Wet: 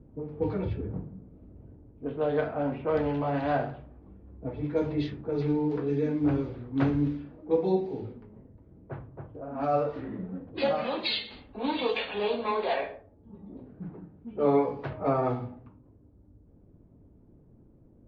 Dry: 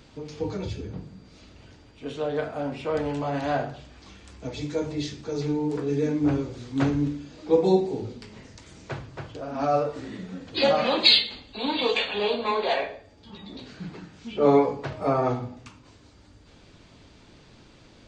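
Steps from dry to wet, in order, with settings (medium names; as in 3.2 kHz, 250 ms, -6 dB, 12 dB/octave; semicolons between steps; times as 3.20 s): level-controlled noise filter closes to 350 Hz, open at -21.5 dBFS; gain riding within 4 dB 0.5 s; distance through air 260 m; trim -2.5 dB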